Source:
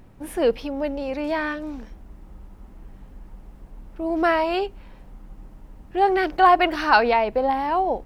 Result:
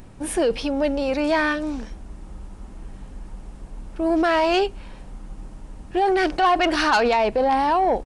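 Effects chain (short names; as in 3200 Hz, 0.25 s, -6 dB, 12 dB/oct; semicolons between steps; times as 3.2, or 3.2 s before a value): downsampling 22050 Hz; in parallel at +0.5 dB: negative-ratio compressor -22 dBFS, ratio -0.5; on the sum: soft clip -8.5 dBFS, distortion -20 dB; high shelf 4600 Hz +10 dB; notch 2000 Hz, Q 28; gain -2.5 dB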